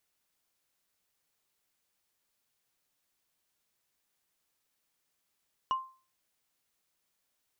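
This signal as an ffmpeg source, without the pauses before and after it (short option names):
-f lavfi -i "aevalsrc='0.0668*pow(10,-3*t/0.37)*sin(2*PI*1050*t)+0.0168*pow(10,-3*t/0.11)*sin(2*PI*2894.8*t)+0.00422*pow(10,-3*t/0.049)*sin(2*PI*5674.2*t)+0.00106*pow(10,-3*t/0.027)*sin(2*PI*9379.6*t)+0.000266*pow(10,-3*t/0.017)*sin(2*PI*14007*t)':d=0.45:s=44100"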